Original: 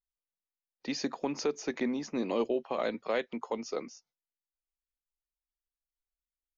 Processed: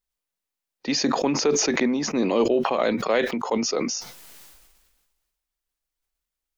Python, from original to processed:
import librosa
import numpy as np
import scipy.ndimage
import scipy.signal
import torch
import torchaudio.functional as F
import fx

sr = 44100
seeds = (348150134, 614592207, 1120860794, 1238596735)

y = fx.sustainer(x, sr, db_per_s=37.0)
y = y * librosa.db_to_amplitude(8.5)